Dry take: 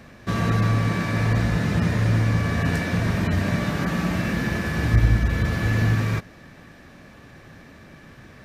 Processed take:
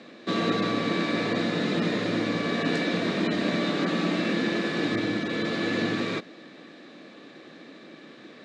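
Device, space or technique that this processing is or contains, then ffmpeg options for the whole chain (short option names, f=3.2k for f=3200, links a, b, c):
television speaker: -af "highpass=f=210:w=0.5412,highpass=f=210:w=1.3066,equalizer=f=320:t=q:w=4:g=7,equalizer=f=480:t=q:w=4:g=4,equalizer=f=910:t=q:w=4:g=-5,equalizer=f=1.6k:t=q:w=4:g=-4,equalizer=f=3.8k:t=q:w=4:g=9,equalizer=f=5.8k:t=q:w=4:g=-6,lowpass=f=7k:w=0.5412,lowpass=f=7k:w=1.3066"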